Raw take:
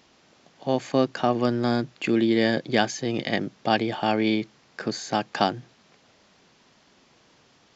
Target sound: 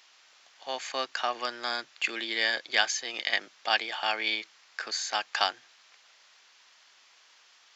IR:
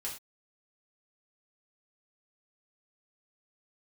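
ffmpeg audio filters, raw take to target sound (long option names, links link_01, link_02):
-af "highpass=1300,volume=3dB"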